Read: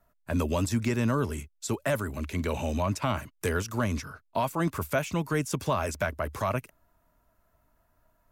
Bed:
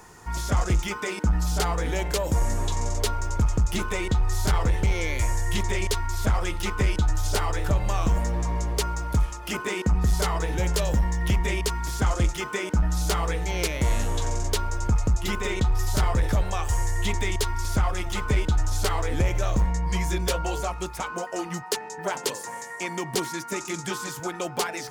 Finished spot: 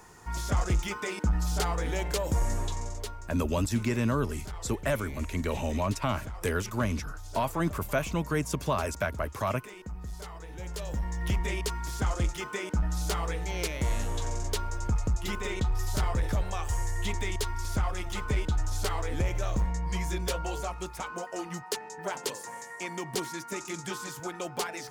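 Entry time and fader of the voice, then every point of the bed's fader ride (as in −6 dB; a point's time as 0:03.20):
3.00 s, −1.0 dB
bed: 0:02.57 −4 dB
0:03.36 −17.5 dB
0:10.41 −17.5 dB
0:11.28 −5.5 dB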